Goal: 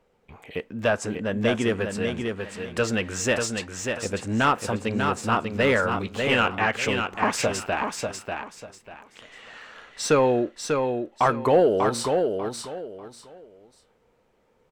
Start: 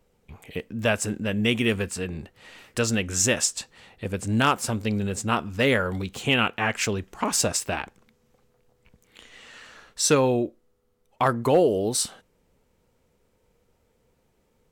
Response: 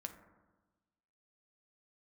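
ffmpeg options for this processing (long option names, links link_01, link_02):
-filter_complex "[0:a]asettb=1/sr,asplit=3[link_01][link_02][link_03];[link_01]atrim=end=0.884[link_04];[link_02]atrim=start=0.88:end=1.82,asetpts=PTS-STARTPTS,afade=type=in:duration=0.004:curve=qsin,afade=type=out:start_time=0.936:duration=0.004:curve=qsin,equalizer=frequency=2500:width_type=o:width=0.67:gain=-8,equalizer=frequency=6300:width_type=o:width=0.67:gain=4,equalizer=frequency=16000:width_type=o:width=0.67:gain=-11[link_05];[link_03]atrim=start=1.816[link_06];[link_04][link_05]acrossfade=duration=0.004:curve1=hsin:curve2=qsin[link_07];[link_07][link_06]acrossfade=duration=0.004:curve1=qsin:curve2=hsin,asplit=2[link_08][link_09];[link_09]highpass=frequency=720:poles=1,volume=12dB,asoftclip=type=tanh:threshold=-7dB[link_10];[link_08][link_10]amix=inputs=2:normalize=0,lowpass=frequency=1400:poles=1,volume=-6dB,aecho=1:1:593|1186|1779:0.562|0.141|0.0351"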